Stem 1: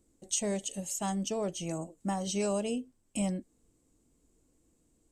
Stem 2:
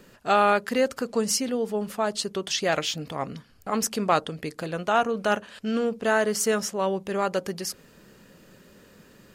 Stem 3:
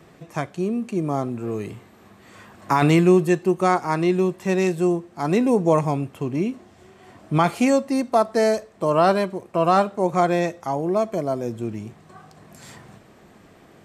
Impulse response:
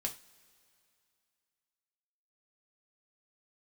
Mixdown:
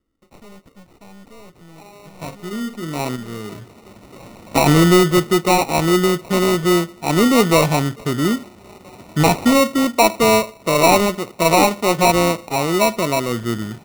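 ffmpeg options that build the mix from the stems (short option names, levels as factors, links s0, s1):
-filter_complex "[0:a]lowpass=4400,aeval=exprs='(tanh(112*val(0)+0.7)-tanh(0.7))/112':c=same,volume=1.06,asplit=2[s0][s1];[1:a]adynamicsmooth=sensitivity=2:basefreq=1400,aphaser=in_gain=1:out_gain=1:delay=4.3:decay=0.22:speed=0.4:type=triangular,adelay=1500,volume=0.126[s2];[2:a]acontrast=86,adelay=1850,volume=0.708,asplit=2[s3][s4];[s4]volume=0.224[s5];[s1]apad=whole_len=692342[s6];[s3][s6]sidechaincompress=threshold=0.00224:ratio=8:attack=5.6:release=390[s7];[s0][s2]amix=inputs=2:normalize=0,bandreject=f=7200:w=8.4,alimiter=level_in=2.99:limit=0.0631:level=0:latency=1:release=173,volume=0.335,volume=1[s8];[3:a]atrim=start_sample=2205[s9];[s5][s9]afir=irnorm=-1:irlink=0[s10];[s7][s8][s10]amix=inputs=3:normalize=0,acrusher=samples=27:mix=1:aa=0.000001"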